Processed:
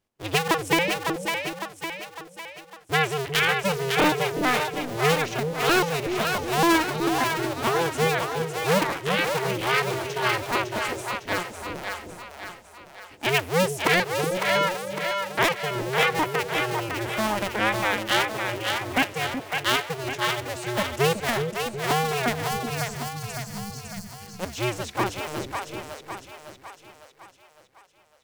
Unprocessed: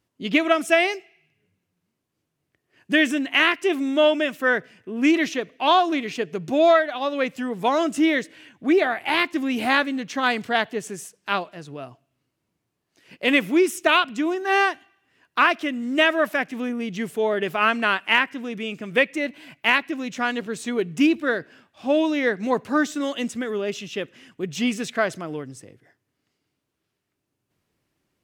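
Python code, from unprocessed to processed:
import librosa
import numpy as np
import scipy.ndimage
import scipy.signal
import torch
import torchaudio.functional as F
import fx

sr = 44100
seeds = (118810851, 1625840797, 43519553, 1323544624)

y = fx.cycle_switch(x, sr, every=2, mode='inverted')
y = fx.spec_erase(y, sr, start_s=22.42, length_s=1.78, low_hz=220.0, high_hz=4100.0)
y = fx.echo_split(y, sr, split_hz=510.0, low_ms=371, high_ms=555, feedback_pct=52, wet_db=-4.5)
y = F.gain(torch.from_numpy(y), -4.0).numpy()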